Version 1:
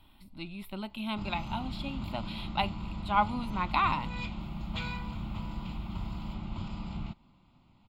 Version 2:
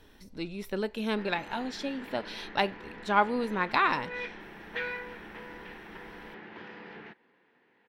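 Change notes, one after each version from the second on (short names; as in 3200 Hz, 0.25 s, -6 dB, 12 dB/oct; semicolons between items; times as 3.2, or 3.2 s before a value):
background: add speaker cabinet 460–3000 Hz, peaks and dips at 600 Hz -9 dB, 1200 Hz -6 dB, 1800 Hz +9 dB; master: remove fixed phaser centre 1700 Hz, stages 6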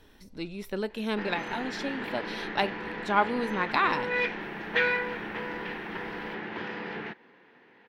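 background +9.5 dB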